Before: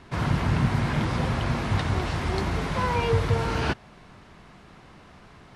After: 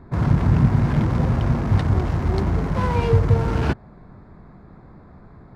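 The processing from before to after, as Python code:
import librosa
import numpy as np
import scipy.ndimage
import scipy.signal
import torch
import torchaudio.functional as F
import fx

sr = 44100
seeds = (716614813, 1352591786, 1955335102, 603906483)

y = fx.wiener(x, sr, points=15)
y = fx.low_shelf(y, sr, hz=400.0, db=8.0)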